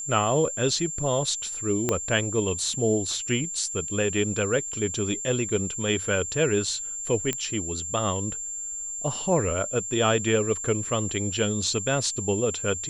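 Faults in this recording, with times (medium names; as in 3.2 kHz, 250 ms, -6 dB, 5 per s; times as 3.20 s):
whine 7.3 kHz -31 dBFS
1.89 s: pop -9 dBFS
7.33 s: pop -12 dBFS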